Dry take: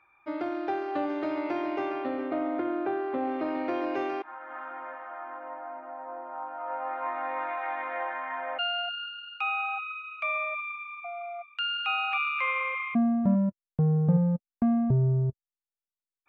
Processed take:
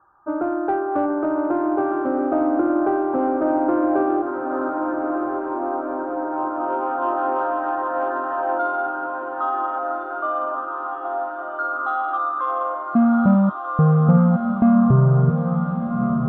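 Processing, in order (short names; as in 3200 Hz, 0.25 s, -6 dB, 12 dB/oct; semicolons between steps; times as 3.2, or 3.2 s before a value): steep low-pass 1600 Hz 96 dB/oct; in parallel at -8 dB: soft clip -26 dBFS, distortion -12 dB; on the sum: diffused feedback echo 1.413 s, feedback 66%, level -6 dB; gain +6.5 dB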